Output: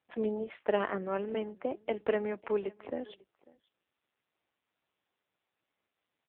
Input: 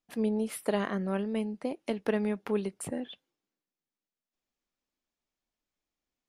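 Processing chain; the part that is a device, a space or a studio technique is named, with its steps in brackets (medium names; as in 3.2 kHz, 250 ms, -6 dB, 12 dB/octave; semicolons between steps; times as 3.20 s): 1.34–3.10 s: Bessel high-pass 190 Hz, order 8; satellite phone (band-pass 330–3000 Hz; delay 545 ms -23.5 dB; trim +3 dB; AMR-NB 5.9 kbps 8 kHz)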